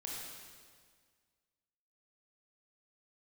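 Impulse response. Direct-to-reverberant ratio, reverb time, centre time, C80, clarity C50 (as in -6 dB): -4.0 dB, 1.8 s, 0.107 s, 0.5 dB, -1.5 dB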